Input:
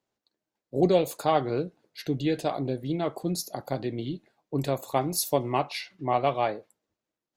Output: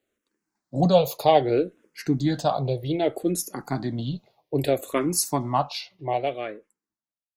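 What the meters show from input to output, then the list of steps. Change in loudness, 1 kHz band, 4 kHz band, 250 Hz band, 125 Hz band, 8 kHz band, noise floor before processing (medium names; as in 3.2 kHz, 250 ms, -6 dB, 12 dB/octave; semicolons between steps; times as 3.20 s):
+3.5 dB, +3.0 dB, +3.5 dB, +3.5 dB, +4.5 dB, +5.0 dB, under -85 dBFS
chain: fade out at the end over 2.38 s; barber-pole phaser -0.63 Hz; trim +7.5 dB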